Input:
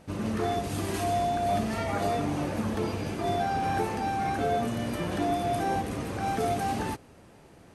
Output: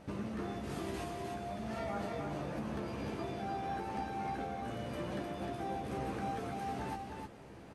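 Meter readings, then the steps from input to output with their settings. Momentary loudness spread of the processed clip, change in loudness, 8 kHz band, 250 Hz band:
3 LU, −10.5 dB, −14.0 dB, −9.0 dB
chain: high-shelf EQ 5,700 Hz −9.5 dB
mains-hum notches 50/100 Hz
downward compressor 12 to 1, threshold −36 dBFS, peak gain reduction 13.5 dB
double-tracking delay 15 ms −6 dB
on a send: single-tap delay 306 ms −4.5 dB
on the sum: level −1 dB

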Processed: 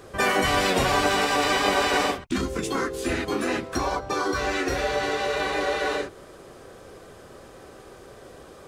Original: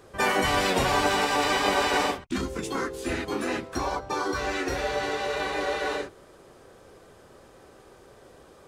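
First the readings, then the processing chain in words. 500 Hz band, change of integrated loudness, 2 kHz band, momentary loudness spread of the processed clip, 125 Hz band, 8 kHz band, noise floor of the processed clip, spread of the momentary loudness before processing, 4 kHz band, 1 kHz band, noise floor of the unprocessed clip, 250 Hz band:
+2.5 dB, +2.0 dB, +2.5 dB, 6 LU, +2.5 dB, +2.5 dB, −47 dBFS, 8 LU, +2.5 dB, +1.5 dB, −53 dBFS, +2.5 dB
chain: notch filter 890 Hz, Q 13
in parallel at +0.5 dB: downward compressor, threshold −34 dBFS, peak gain reduction 14 dB

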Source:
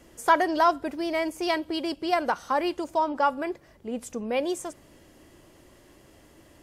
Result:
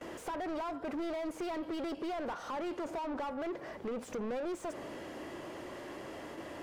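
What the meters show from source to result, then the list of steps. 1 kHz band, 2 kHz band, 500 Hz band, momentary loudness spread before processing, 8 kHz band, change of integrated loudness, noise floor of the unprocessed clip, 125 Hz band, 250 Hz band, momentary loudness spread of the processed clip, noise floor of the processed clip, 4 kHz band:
−15.0 dB, −14.0 dB, −9.5 dB, 12 LU, −11.0 dB, −13.0 dB, −56 dBFS, can't be measured, −7.5 dB, 8 LU, −49 dBFS, −14.0 dB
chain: downward compressor 12 to 1, threshold −35 dBFS, peak gain reduction 21 dB
dynamic equaliser 450 Hz, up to +3 dB, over −52 dBFS, Q 0.81
noise gate with hold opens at −46 dBFS
mid-hump overdrive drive 33 dB, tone 1,000 Hz, clips at −22 dBFS
level −7 dB

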